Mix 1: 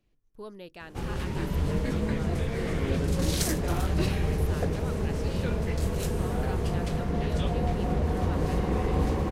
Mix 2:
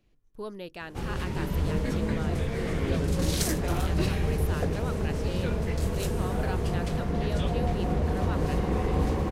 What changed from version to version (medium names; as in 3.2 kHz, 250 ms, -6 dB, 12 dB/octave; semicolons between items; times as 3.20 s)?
speech +4.5 dB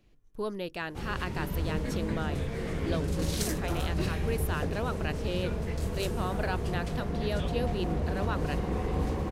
speech +4.0 dB; background -4.0 dB